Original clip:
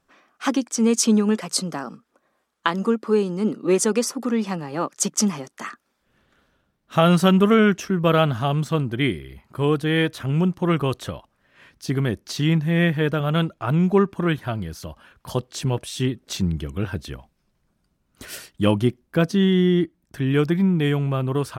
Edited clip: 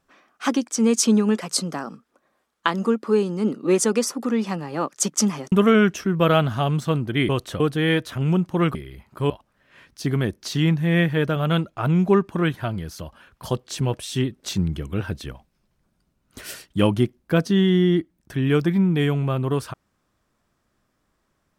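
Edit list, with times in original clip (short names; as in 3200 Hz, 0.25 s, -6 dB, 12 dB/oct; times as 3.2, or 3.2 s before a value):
5.52–7.36 cut
9.13–9.68 swap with 10.83–11.14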